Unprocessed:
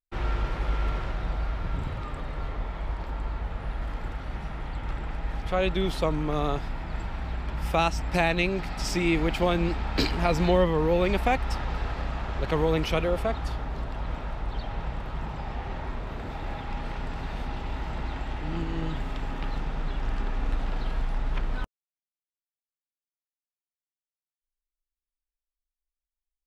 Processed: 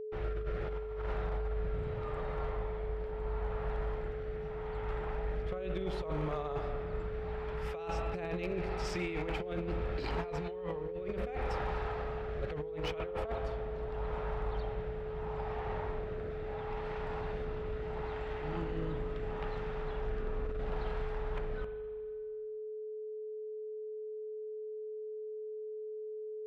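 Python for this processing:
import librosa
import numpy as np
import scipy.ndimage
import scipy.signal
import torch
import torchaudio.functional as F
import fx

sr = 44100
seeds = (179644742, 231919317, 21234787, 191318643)

y = fx.lowpass(x, sr, hz=1100.0, slope=6)
y = fx.peak_eq(y, sr, hz=270.0, db=-11.0, octaves=0.8)
y = fx.rotary(y, sr, hz=0.75)
y = fx.low_shelf(y, sr, hz=120.0, db=-10.5)
y = fx.rev_spring(y, sr, rt60_s=1.8, pass_ms=(39, 59), chirp_ms=25, drr_db=9.0)
y = fx.over_compress(y, sr, threshold_db=-35.0, ratio=-0.5)
y = np.clip(y, -10.0 ** (-28.5 / 20.0), 10.0 ** (-28.5 / 20.0))
y = y + 10.0 ** (-39.0 / 20.0) * np.sin(2.0 * np.pi * 430.0 * np.arange(len(y)) / sr)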